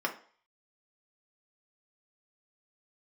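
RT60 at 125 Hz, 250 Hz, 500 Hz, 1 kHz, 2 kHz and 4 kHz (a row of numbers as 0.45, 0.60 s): 0.30, 0.35, 0.45, 0.50, 0.45, 0.45 s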